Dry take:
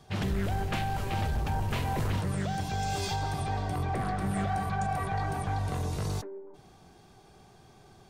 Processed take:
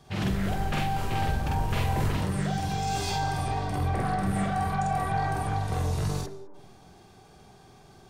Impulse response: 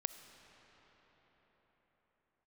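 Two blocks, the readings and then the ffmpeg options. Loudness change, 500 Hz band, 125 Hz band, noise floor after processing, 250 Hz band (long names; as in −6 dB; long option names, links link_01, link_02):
+3.0 dB, +2.0 dB, +2.5 dB, −54 dBFS, +3.5 dB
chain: -filter_complex "[0:a]asplit=2[link_01][link_02];[1:a]atrim=start_sample=2205,afade=type=out:start_time=0.26:duration=0.01,atrim=end_sample=11907,adelay=47[link_03];[link_02][link_03]afir=irnorm=-1:irlink=0,volume=1dB[link_04];[link_01][link_04]amix=inputs=2:normalize=0"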